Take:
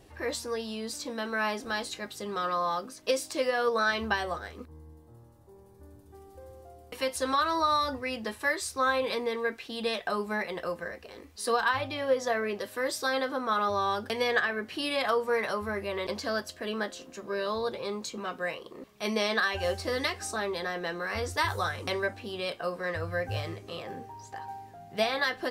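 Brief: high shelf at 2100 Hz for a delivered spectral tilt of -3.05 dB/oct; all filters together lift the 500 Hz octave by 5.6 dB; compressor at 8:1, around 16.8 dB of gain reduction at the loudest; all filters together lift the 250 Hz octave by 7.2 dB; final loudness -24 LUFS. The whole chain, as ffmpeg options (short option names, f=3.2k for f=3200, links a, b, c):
-af "equalizer=f=250:t=o:g=7.5,equalizer=f=500:t=o:g=4,highshelf=f=2.1k:g=8.5,acompressor=threshold=-34dB:ratio=8,volume=13.5dB"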